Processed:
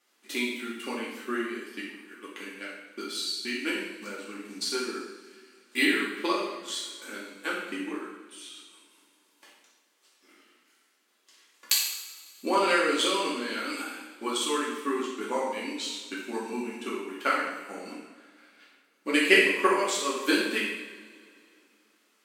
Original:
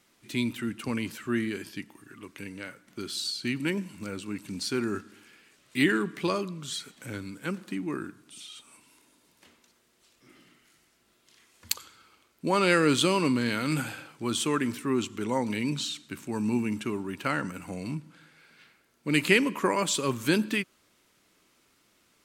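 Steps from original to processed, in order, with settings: tone controls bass -12 dB, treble -1 dB; transient shaper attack +11 dB, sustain -5 dB; brick-wall FIR high-pass 190 Hz; two-slope reverb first 0.86 s, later 2.7 s, from -18 dB, DRR -7 dB; gain -9.5 dB

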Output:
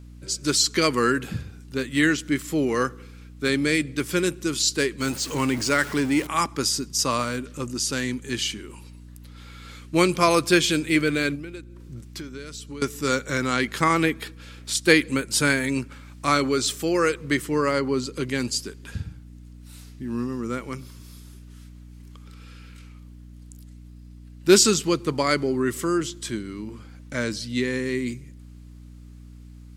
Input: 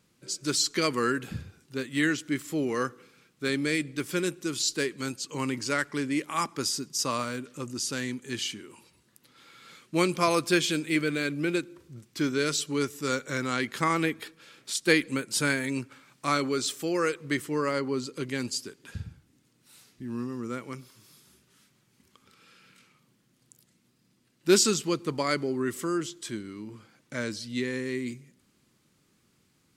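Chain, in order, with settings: 5.01–6.27 zero-crossing step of -37 dBFS; 11.35–12.82 compressor 12:1, threshold -40 dBFS, peak gain reduction 18.5 dB; hum 60 Hz, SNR 18 dB; gain +5.5 dB

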